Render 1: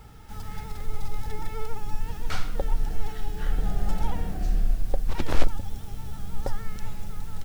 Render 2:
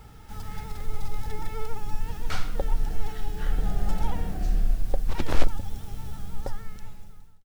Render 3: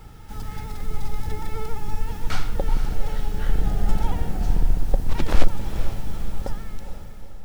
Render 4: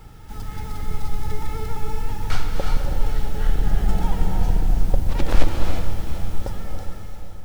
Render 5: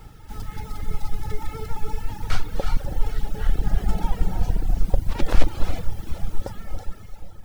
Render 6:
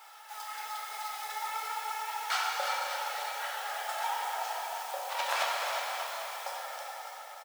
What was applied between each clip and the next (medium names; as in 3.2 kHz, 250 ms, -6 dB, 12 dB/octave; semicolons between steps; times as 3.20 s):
fade out at the end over 1.38 s
octave divider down 2 oct, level +1 dB; echo that smears into a reverb 458 ms, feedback 52%, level -9.5 dB; trim +2.5 dB
gated-style reverb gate 380 ms rising, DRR 3 dB
reverb removal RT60 1.4 s
steep high-pass 680 Hz 36 dB/octave; delay 588 ms -10.5 dB; plate-style reverb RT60 3.2 s, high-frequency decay 0.75×, DRR -3.5 dB